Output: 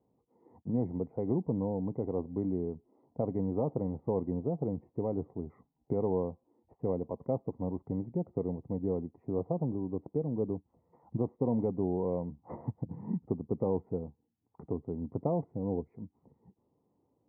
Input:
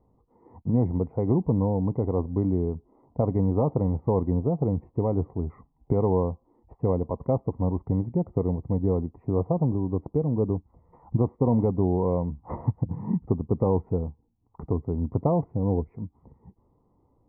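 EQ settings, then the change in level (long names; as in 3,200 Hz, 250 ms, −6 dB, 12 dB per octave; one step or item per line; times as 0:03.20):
Bessel high-pass filter 190 Hz, order 2
high-frequency loss of the air 360 metres
parametric band 1,100 Hz −6.5 dB 0.68 octaves
−4.5 dB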